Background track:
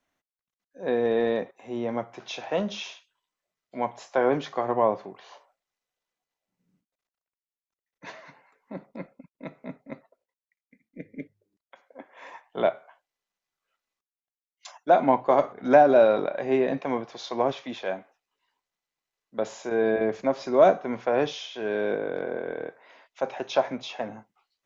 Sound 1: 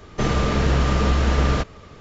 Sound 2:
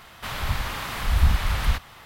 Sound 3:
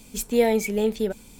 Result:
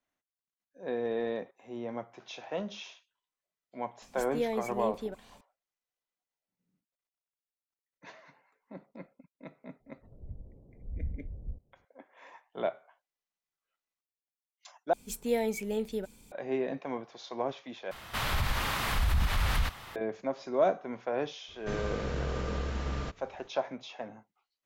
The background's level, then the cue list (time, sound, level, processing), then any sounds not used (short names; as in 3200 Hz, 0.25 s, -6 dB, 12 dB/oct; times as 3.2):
background track -8.5 dB
4.02 add 3 -12 dB + high shelf 6400 Hz -7 dB
9.8 add 2 -17 dB + steep low-pass 520 Hz
14.93 replace with 3 -9.5 dB
17.91 replace with 2 + limiter -19.5 dBFS
21.48 add 1 -15.5 dB